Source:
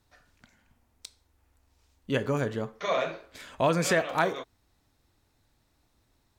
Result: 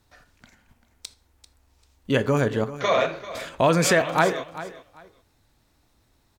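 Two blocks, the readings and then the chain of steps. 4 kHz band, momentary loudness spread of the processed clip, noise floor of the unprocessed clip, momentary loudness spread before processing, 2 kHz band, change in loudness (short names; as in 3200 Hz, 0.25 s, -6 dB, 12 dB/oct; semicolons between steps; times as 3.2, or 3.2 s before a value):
+6.5 dB, 16 LU, -71 dBFS, 13 LU, +6.0 dB, +5.5 dB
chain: in parallel at +1 dB: level quantiser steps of 16 dB; on the sum: feedback echo 0.392 s, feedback 21%, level -15 dB; gain +2.5 dB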